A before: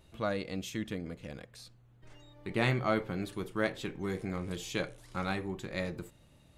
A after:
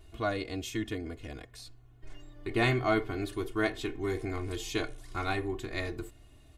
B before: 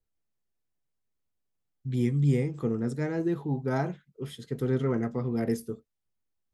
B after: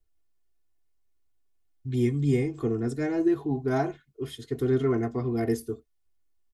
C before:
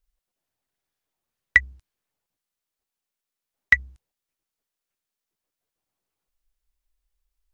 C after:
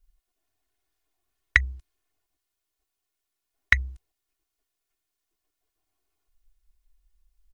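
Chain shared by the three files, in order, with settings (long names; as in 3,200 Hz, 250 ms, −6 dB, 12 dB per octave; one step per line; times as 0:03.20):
low-shelf EQ 76 Hz +7.5 dB
comb filter 2.8 ms, depth 89%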